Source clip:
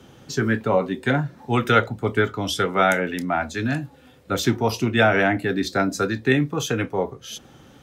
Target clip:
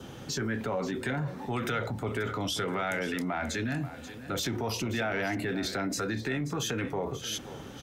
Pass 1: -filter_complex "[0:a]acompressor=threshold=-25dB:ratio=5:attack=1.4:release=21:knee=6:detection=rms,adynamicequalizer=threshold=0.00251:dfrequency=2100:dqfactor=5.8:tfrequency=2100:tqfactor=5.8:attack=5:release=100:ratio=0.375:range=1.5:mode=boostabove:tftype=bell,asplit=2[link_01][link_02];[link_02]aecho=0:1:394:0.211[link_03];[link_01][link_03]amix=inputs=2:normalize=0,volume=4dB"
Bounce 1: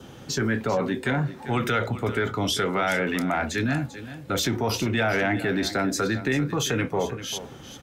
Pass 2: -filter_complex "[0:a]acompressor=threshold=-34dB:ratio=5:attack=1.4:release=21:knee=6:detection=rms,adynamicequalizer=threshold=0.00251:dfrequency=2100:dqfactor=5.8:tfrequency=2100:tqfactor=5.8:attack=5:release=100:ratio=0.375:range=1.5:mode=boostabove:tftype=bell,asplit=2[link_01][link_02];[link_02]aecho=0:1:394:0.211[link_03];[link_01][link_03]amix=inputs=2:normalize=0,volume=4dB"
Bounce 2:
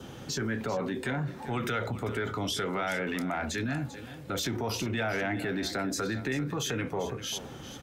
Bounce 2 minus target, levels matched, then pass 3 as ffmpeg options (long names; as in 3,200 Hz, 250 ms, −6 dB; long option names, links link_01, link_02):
echo 140 ms early
-filter_complex "[0:a]acompressor=threshold=-34dB:ratio=5:attack=1.4:release=21:knee=6:detection=rms,adynamicequalizer=threshold=0.00251:dfrequency=2100:dqfactor=5.8:tfrequency=2100:tqfactor=5.8:attack=5:release=100:ratio=0.375:range=1.5:mode=boostabove:tftype=bell,asplit=2[link_01][link_02];[link_02]aecho=0:1:534:0.211[link_03];[link_01][link_03]amix=inputs=2:normalize=0,volume=4dB"